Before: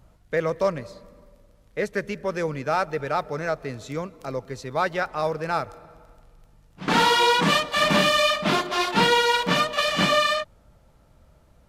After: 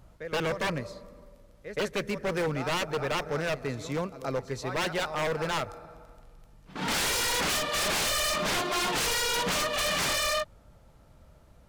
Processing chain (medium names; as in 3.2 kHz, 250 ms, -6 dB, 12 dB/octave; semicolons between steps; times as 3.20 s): pre-echo 124 ms -15 dB; wavefolder -23 dBFS